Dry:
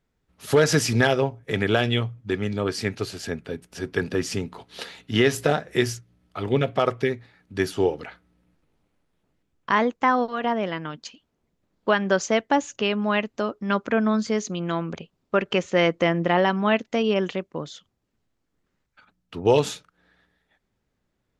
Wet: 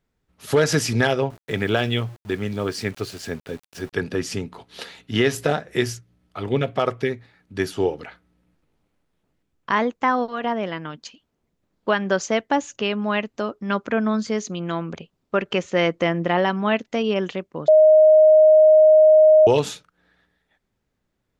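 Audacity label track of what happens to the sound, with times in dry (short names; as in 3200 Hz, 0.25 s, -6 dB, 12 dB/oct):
1.300000	3.930000	sample gate under -41.5 dBFS
17.680000	19.470000	bleep 622 Hz -8.5 dBFS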